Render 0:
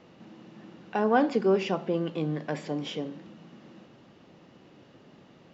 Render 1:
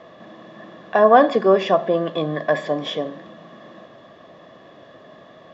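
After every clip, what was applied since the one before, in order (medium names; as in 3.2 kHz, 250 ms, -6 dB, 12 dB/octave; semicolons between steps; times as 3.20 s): small resonant body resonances 650/1100/1700/3400 Hz, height 18 dB, ringing for 25 ms; trim +2 dB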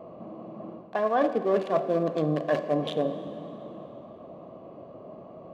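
local Wiener filter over 25 samples; reverse; compression 10:1, threshold -24 dBFS, peak gain reduction 17 dB; reverse; plate-style reverb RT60 3 s, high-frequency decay 0.95×, DRR 10.5 dB; trim +2.5 dB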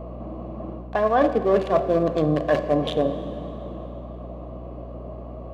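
hum 60 Hz, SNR 13 dB; trim +5 dB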